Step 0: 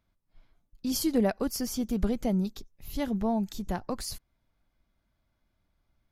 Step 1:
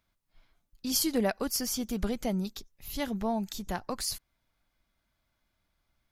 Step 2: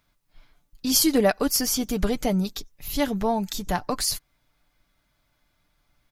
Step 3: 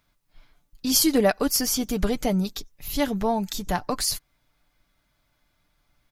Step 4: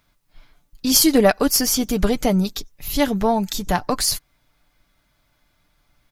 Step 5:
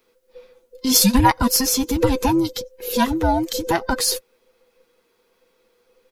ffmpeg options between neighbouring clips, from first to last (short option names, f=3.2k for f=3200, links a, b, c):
-af "tiltshelf=f=800:g=-4.5"
-af "aecho=1:1:6.8:0.37,volume=7.5dB"
-af anull
-af "aeval=exprs='0.473*(cos(1*acos(clip(val(0)/0.473,-1,1)))-cos(1*PI/2))+0.0188*(cos(4*acos(clip(val(0)/0.473,-1,1)))-cos(4*PI/2))':c=same,volume=5dB"
-af "afftfilt=real='real(if(between(b,1,1008),(2*floor((b-1)/24)+1)*24-b,b),0)':imag='imag(if(between(b,1,1008),(2*floor((b-1)/24)+1)*24-b,b),0)*if(between(b,1,1008),-1,1)':win_size=2048:overlap=0.75"